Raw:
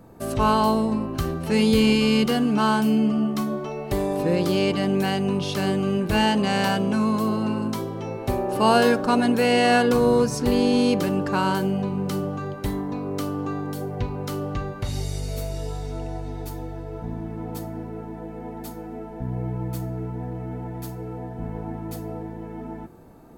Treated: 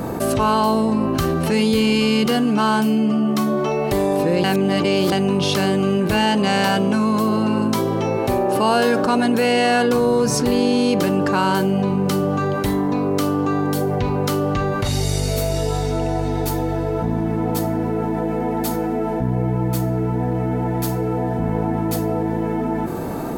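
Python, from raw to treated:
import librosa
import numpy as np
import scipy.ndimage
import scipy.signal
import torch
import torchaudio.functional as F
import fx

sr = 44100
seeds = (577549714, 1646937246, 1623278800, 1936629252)

y = fx.edit(x, sr, fx.reverse_span(start_s=4.44, length_s=0.68), tone=tone)
y = fx.low_shelf(y, sr, hz=78.0, db=-11.0)
y = fx.env_flatten(y, sr, amount_pct=70)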